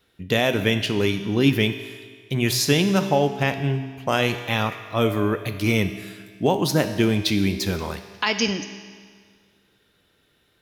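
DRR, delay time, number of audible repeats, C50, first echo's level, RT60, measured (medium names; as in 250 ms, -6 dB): 8.0 dB, no echo, no echo, 10.0 dB, no echo, 1.8 s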